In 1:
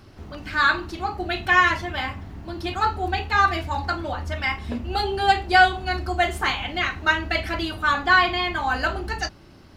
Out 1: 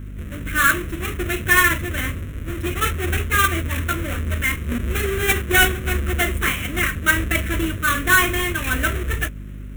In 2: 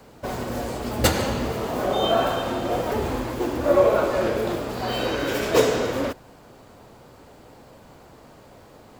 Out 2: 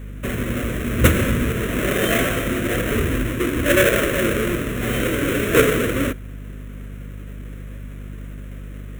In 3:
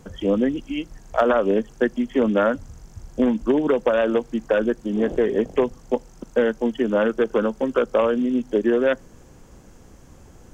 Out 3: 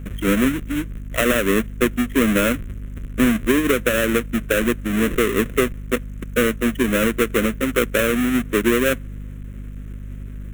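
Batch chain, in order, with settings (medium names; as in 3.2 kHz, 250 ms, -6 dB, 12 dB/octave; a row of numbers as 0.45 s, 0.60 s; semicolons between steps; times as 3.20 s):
square wave that keeps the level; static phaser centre 2 kHz, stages 4; hum 50 Hz, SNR 12 dB; normalise loudness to -20 LUFS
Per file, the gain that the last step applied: +1.5 dB, +2.5 dB, +0.5 dB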